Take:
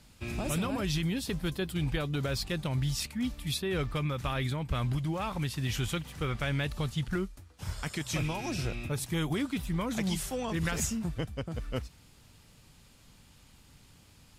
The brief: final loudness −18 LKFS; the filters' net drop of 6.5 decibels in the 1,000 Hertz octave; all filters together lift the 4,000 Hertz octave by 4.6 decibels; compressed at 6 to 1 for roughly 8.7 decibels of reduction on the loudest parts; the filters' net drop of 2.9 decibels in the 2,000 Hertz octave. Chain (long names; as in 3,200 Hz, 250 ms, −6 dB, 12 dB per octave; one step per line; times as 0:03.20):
parametric band 1,000 Hz −8 dB
parametric band 2,000 Hz −4 dB
parametric band 4,000 Hz +7.5 dB
downward compressor 6 to 1, threshold −36 dBFS
level +21.5 dB